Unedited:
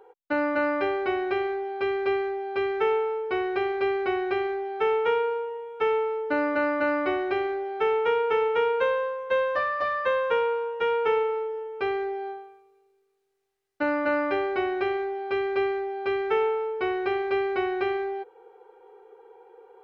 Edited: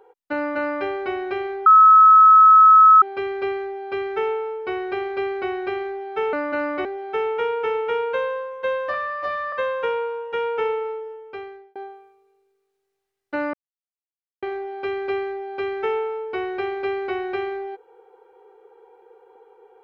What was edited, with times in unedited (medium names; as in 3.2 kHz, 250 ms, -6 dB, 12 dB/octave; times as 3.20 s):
1.66 s: add tone 1.29 kHz -7 dBFS 1.36 s
4.97–6.61 s: delete
7.13–7.52 s: delete
9.61–10.00 s: stretch 1.5×
11.37–12.23 s: fade out
14.01–14.90 s: mute